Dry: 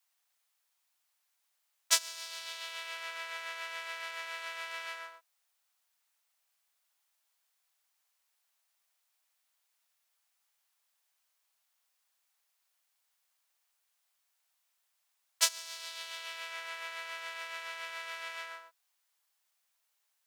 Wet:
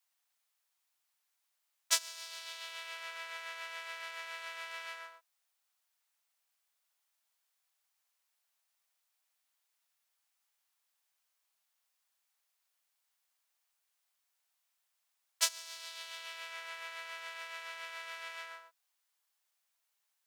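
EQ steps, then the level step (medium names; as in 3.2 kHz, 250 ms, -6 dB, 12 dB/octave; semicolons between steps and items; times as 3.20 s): high-pass 310 Hz; -3.0 dB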